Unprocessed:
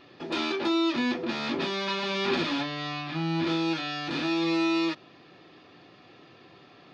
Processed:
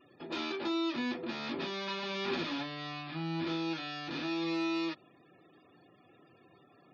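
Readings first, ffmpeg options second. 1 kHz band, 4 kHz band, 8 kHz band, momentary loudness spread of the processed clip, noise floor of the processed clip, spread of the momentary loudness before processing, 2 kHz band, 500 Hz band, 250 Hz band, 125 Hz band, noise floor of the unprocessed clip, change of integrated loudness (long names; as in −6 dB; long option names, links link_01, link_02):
−7.5 dB, −7.5 dB, can't be measured, 6 LU, −63 dBFS, 6 LU, −7.5 dB, −7.5 dB, −7.5 dB, −7.5 dB, −54 dBFS, −7.5 dB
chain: -af "afftfilt=real='re*gte(hypot(re,im),0.00316)':imag='im*gte(hypot(re,im),0.00316)':win_size=1024:overlap=0.75,volume=-7.5dB"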